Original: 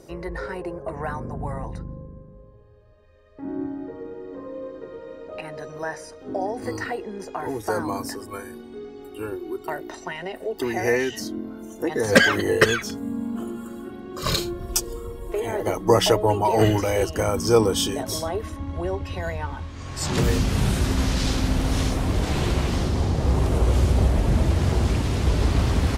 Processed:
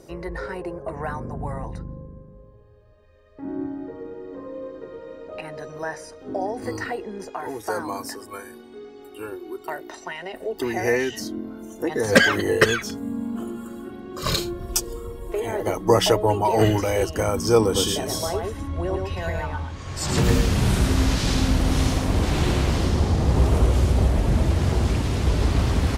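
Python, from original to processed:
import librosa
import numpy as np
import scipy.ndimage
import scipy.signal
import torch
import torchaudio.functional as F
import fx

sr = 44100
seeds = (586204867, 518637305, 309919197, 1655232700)

y = fx.low_shelf(x, sr, hz=260.0, db=-9.5, at=(7.29, 10.34))
y = fx.echo_single(y, sr, ms=110, db=-3.0, at=(17.64, 23.67))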